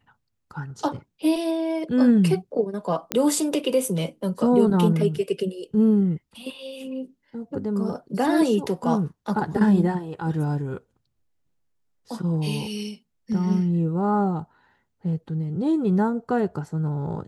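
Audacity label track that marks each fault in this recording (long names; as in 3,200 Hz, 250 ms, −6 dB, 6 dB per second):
3.120000	3.120000	click −7 dBFS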